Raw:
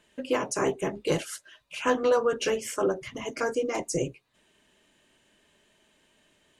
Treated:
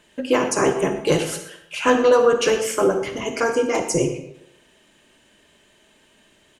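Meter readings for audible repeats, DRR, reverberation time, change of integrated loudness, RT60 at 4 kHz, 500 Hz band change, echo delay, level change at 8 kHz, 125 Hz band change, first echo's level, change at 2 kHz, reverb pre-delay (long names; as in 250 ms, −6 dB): 1, 6.5 dB, 0.80 s, +8.5 dB, 0.60 s, +8.5 dB, 123 ms, +8.0 dB, +8.0 dB, −16.5 dB, +8.5 dB, 39 ms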